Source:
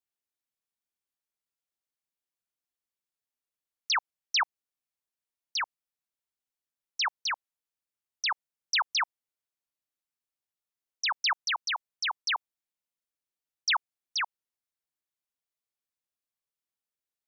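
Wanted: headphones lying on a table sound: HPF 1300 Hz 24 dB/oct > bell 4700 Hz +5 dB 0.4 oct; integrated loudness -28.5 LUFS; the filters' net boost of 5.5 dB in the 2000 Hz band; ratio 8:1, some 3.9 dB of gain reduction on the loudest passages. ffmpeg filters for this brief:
-af "equalizer=f=2k:t=o:g=7,acompressor=threshold=-22dB:ratio=8,highpass=f=1.3k:w=0.5412,highpass=f=1.3k:w=1.3066,equalizer=f=4.7k:t=o:w=0.4:g=5,volume=-1dB"

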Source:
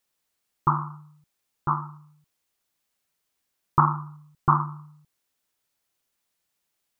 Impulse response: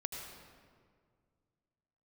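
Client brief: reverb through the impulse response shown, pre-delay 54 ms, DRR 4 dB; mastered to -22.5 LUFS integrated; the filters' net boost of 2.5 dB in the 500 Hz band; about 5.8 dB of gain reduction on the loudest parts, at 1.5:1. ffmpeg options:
-filter_complex "[0:a]equalizer=f=500:t=o:g=4.5,acompressor=threshold=-30dB:ratio=1.5,asplit=2[a][b];[1:a]atrim=start_sample=2205,adelay=54[c];[b][c]afir=irnorm=-1:irlink=0,volume=-4dB[d];[a][d]amix=inputs=2:normalize=0,volume=8dB"

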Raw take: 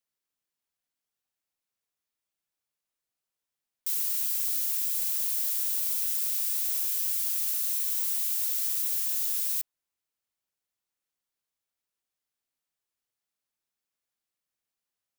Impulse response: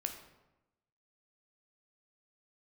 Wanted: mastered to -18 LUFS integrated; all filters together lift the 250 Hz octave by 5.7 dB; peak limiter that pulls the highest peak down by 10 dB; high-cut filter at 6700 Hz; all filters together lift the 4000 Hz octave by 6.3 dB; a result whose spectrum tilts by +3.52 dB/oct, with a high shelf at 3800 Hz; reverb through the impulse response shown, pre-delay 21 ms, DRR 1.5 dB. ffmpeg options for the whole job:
-filter_complex "[0:a]lowpass=6.7k,equalizer=f=250:t=o:g=7.5,highshelf=f=3.8k:g=5.5,equalizer=f=4k:t=o:g=5,alimiter=level_in=9dB:limit=-24dB:level=0:latency=1,volume=-9dB,asplit=2[a][b];[1:a]atrim=start_sample=2205,adelay=21[c];[b][c]afir=irnorm=-1:irlink=0,volume=-1.5dB[d];[a][d]amix=inputs=2:normalize=0,volume=19.5dB"

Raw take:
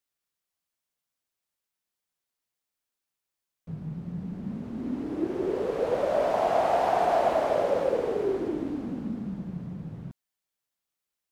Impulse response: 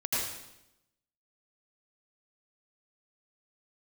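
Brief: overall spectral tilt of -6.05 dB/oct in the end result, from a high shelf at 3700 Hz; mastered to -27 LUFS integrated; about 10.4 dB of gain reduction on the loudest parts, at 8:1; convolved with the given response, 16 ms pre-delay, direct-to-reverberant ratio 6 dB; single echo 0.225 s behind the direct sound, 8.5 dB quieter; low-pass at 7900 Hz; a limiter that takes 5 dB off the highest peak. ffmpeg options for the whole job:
-filter_complex "[0:a]lowpass=7.9k,highshelf=f=3.7k:g=4.5,acompressor=threshold=-31dB:ratio=8,alimiter=level_in=3.5dB:limit=-24dB:level=0:latency=1,volume=-3.5dB,aecho=1:1:225:0.376,asplit=2[a][b];[1:a]atrim=start_sample=2205,adelay=16[c];[b][c]afir=irnorm=-1:irlink=0,volume=-14dB[d];[a][d]amix=inputs=2:normalize=0,volume=8.5dB"

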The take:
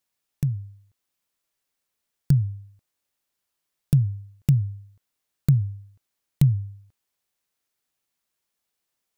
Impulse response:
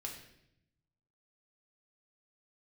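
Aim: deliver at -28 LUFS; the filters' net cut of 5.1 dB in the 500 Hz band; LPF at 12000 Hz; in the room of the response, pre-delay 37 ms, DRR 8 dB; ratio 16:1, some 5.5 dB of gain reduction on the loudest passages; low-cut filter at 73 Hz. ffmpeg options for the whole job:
-filter_complex "[0:a]highpass=73,lowpass=12k,equalizer=f=500:t=o:g=-7,acompressor=threshold=-19dB:ratio=16,asplit=2[a][b];[1:a]atrim=start_sample=2205,adelay=37[c];[b][c]afir=irnorm=-1:irlink=0,volume=-6dB[d];[a][d]amix=inputs=2:normalize=0,volume=1dB"

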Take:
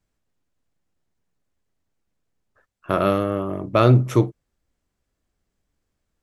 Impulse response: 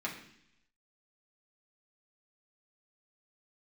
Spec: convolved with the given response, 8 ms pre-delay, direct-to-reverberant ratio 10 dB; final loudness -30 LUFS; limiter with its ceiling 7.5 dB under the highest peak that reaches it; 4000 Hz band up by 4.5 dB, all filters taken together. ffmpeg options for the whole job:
-filter_complex "[0:a]equalizer=f=4k:t=o:g=5.5,alimiter=limit=-8.5dB:level=0:latency=1,asplit=2[a][b];[1:a]atrim=start_sample=2205,adelay=8[c];[b][c]afir=irnorm=-1:irlink=0,volume=-13.5dB[d];[a][d]amix=inputs=2:normalize=0,volume=-7.5dB"

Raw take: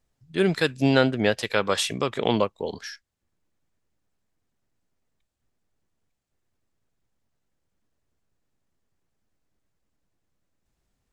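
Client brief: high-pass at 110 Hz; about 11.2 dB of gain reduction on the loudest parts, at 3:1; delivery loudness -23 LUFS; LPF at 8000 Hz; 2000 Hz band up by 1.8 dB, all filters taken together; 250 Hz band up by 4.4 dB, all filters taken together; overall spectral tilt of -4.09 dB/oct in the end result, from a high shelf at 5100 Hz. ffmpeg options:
-af "highpass=110,lowpass=8k,equalizer=f=250:t=o:g=5.5,equalizer=f=2k:t=o:g=3.5,highshelf=f=5.1k:g=-7,acompressor=threshold=-28dB:ratio=3,volume=8.5dB"

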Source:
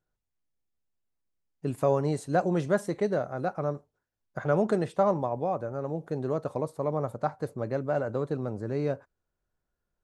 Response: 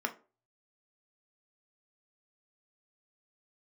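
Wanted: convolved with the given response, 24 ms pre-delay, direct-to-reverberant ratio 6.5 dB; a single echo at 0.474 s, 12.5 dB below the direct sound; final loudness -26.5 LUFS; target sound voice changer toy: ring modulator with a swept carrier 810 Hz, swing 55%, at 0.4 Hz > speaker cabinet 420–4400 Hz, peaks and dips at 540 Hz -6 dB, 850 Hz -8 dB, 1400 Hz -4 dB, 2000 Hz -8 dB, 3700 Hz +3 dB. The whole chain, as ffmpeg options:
-filter_complex "[0:a]aecho=1:1:474:0.237,asplit=2[a][b];[1:a]atrim=start_sample=2205,adelay=24[c];[b][c]afir=irnorm=-1:irlink=0,volume=-11.5dB[d];[a][d]amix=inputs=2:normalize=0,aeval=exprs='val(0)*sin(2*PI*810*n/s+810*0.55/0.4*sin(2*PI*0.4*n/s))':c=same,highpass=420,equalizer=f=540:t=q:w=4:g=-6,equalizer=f=850:t=q:w=4:g=-8,equalizer=f=1.4k:t=q:w=4:g=-4,equalizer=f=2k:t=q:w=4:g=-8,equalizer=f=3.7k:t=q:w=4:g=3,lowpass=f=4.4k:w=0.5412,lowpass=f=4.4k:w=1.3066,volume=9.5dB"

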